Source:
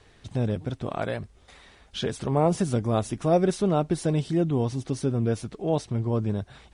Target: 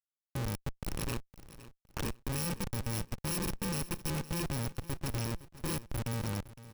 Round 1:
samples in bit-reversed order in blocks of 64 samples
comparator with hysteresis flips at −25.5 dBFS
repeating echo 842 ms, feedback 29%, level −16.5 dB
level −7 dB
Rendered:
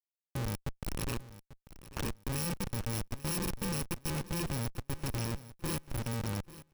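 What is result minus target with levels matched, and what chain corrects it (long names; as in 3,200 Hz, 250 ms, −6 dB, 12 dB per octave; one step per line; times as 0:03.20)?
echo 330 ms late
samples in bit-reversed order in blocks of 64 samples
comparator with hysteresis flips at −25.5 dBFS
repeating echo 512 ms, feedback 29%, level −16.5 dB
level −7 dB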